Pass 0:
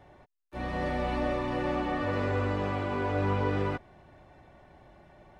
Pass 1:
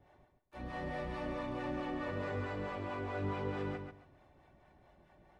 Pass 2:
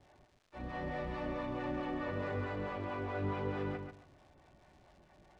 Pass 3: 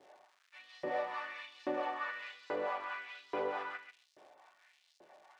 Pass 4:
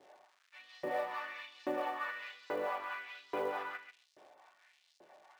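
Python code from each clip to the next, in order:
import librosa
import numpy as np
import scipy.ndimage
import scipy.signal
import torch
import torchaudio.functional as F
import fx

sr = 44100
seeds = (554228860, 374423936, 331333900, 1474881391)

y1 = fx.harmonic_tremolo(x, sr, hz=4.6, depth_pct=70, crossover_hz=490.0)
y1 = fx.echo_feedback(y1, sr, ms=136, feedback_pct=21, wet_db=-6.0)
y1 = y1 * librosa.db_to_amplitude(-6.5)
y2 = fx.dmg_crackle(y1, sr, seeds[0], per_s=320.0, level_db=-54.0)
y2 = fx.air_absorb(y2, sr, metres=82.0)
y2 = y2 * librosa.db_to_amplitude(1.0)
y3 = fx.filter_lfo_highpass(y2, sr, shape='saw_up', hz=1.2, low_hz=370.0, high_hz=5300.0, q=1.8)
y3 = y3 * librosa.db_to_amplitude(2.0)
y4 = fx.quant_float(y3, sr, bits=4)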